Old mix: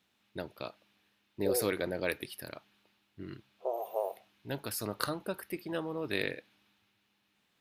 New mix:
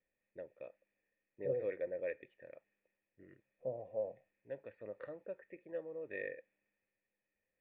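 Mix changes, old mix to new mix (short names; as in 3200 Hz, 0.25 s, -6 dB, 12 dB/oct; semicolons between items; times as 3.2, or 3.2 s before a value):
second voice: remove brick-wall FIR high-pass 350 Hz; master: add vocal tract filter e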